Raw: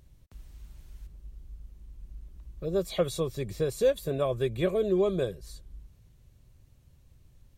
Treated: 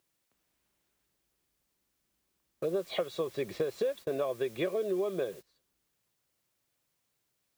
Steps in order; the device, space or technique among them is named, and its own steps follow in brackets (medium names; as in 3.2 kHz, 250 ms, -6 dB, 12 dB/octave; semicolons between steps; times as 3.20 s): baby monitor (band-pass 320–3100 Hz; compression 10:1, threshold -37 dBFS, peak gain reduction 17.5 dB; white noise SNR 20 dB; gate -53 dBFS, range -23 dB); trim +8.5 dB